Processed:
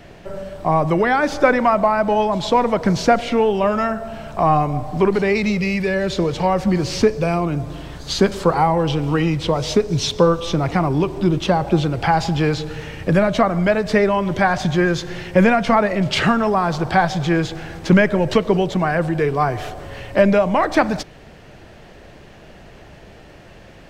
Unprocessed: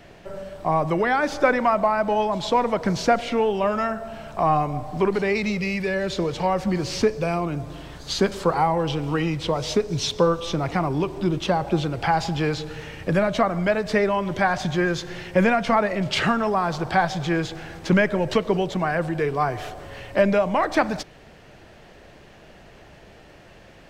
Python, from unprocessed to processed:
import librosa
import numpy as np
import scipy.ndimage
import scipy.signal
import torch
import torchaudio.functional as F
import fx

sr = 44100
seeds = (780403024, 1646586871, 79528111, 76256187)

y = fx.low_shelf(x, sr, hz=320.0, db=3.5)
y = F.gain(torch.from_numpy(y), 3.5).numpy()